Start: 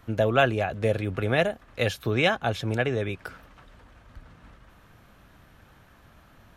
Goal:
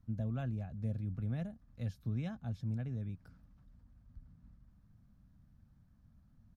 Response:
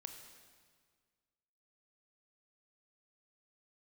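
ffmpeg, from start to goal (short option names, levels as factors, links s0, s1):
-af "firequalizer=gain_entry='entry(220,0);entry(370,-21);entry(610,-19);entry(2900,-26);entry(4800,-15);entry(7600,-19)':delay=0.05:min_phase=1,volume=0.447"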